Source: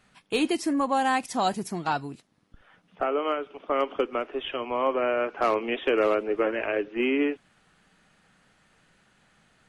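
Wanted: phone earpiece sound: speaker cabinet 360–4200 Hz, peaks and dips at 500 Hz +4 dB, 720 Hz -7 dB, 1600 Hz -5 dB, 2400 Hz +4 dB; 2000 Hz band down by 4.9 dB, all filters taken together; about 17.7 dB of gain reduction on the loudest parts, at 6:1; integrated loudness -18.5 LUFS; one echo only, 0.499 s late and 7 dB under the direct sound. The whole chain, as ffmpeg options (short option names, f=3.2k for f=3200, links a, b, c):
-af "equalizer=f=2k:t=o:g=-7,acompressor=threshold=-40dB:ratio=6,highpass=360,equalizer=f=500:t=q:w=4:g=4,equalizer=f=720:t=q:w=4:g=-7,equalizer=f=1.6k:t=q:w=4:g=-5,equalizer=f=2.4k:t=q:w=4:g=4,lowpass=f=4.2k:w=0.5412,lowpass=f=4.2k:w=1.3066,aecho=1:1:499:0.447,volume=26dB"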